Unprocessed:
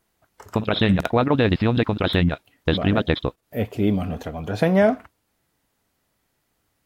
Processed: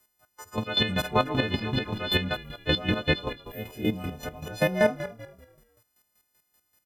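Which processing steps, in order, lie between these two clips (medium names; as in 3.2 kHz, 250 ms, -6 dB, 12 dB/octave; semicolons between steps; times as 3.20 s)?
partials quantised in pitch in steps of 3 st; frequency-shifting echo 217 ms, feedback 37%, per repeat -37 Hz, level -13.5 dB; square tremolo 5.2 Hz, depth 65%, duty 30%; trim -3.5 dB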